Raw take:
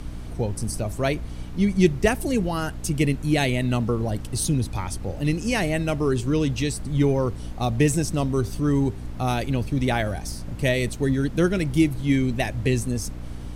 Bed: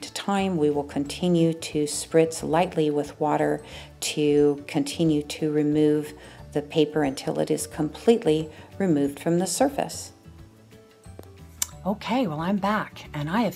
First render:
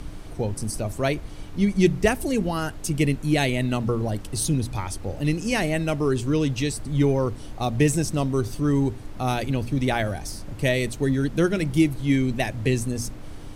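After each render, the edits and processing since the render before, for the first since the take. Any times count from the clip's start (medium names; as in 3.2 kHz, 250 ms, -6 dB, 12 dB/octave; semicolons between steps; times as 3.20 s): de-hum 60 Hz, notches 4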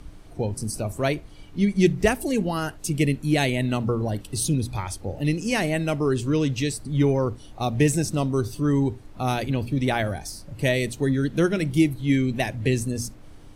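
noise print and reduce 8 dB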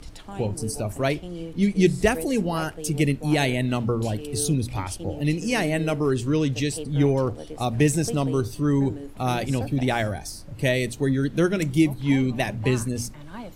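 add bed -14.5 dB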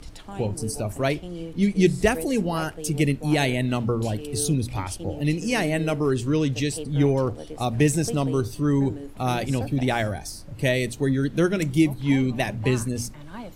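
no audible change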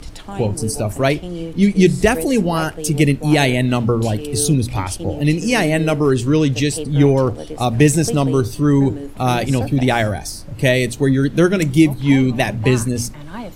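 trim +7.5 dB; peak limiter -1 dBFS, peak gain reduction 2.5 dB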